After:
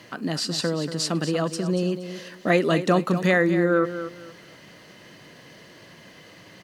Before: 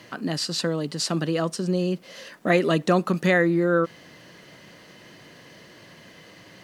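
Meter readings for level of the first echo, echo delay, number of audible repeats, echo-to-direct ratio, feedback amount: -11.0 dB, 0.235 s, 2, -10.5 dB, 24%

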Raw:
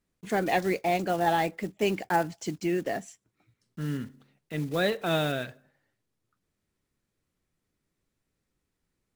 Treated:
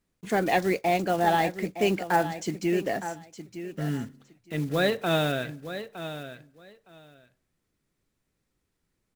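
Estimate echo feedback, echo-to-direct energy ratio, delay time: 16%, -11.5 dB, 0.913 s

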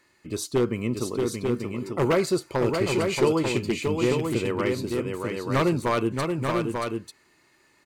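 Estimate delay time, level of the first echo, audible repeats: 0.629 s, -5.0 dB, 2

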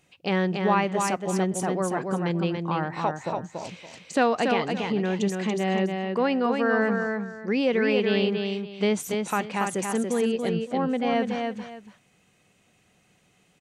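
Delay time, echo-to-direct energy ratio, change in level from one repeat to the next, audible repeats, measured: 0.284 s, -4.0 dB, -12.0 dB, 2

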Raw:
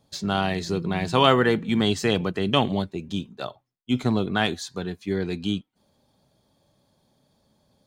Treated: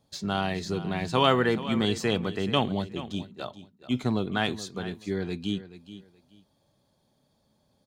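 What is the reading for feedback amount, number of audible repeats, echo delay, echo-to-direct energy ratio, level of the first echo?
22%, 2, 0.427 s, -14.5 dB, -14.5 dB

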